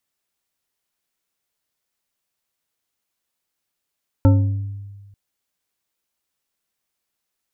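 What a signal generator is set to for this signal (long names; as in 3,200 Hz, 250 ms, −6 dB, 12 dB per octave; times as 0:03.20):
struck glass bar, lowest mode 100 Hz, decay 1.47 s, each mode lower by 5.5 dB, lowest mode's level −8.5 dB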